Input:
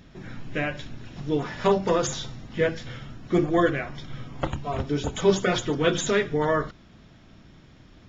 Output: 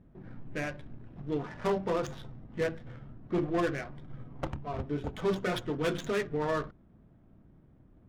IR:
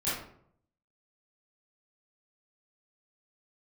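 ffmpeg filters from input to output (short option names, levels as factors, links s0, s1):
-af "asoftclip=type=hard:threshold=0.158,adynamicsmooth=sensitivity=4:basefreq=790,volume=0.447"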